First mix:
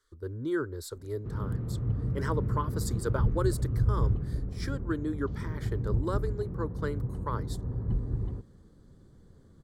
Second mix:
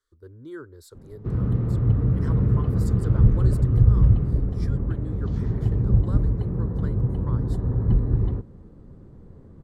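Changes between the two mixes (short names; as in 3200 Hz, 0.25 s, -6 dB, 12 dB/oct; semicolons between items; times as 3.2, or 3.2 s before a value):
speech -8.0 dB; background +10.0 dB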